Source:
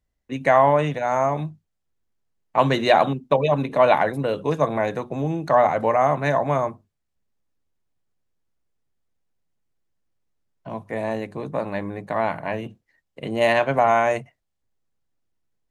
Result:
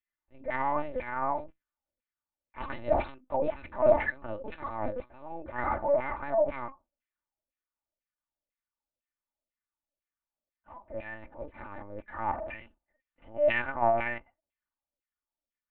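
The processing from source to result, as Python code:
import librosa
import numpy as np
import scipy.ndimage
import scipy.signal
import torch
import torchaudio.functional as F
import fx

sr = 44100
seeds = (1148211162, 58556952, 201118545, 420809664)

y = fx.transient(x, sr, attack_db=-12, sustain_db=5)
y = fx.filter_lfo_bandpass(y, sr, shape='saw_down', hz=2.0, low_hz=460.0, high_hz=2500.0, q=3.2)
y = fx.lpc_vocoder(y, sr, seeds[0], excitation='pitch_kept', order=8)
y = y + 0.58 * np.pad(y, (int(3.4 * sr / 1000.0), 0))[:len(y)]
y = F.gain(torch.from_numpy(y), -2.0).numpy()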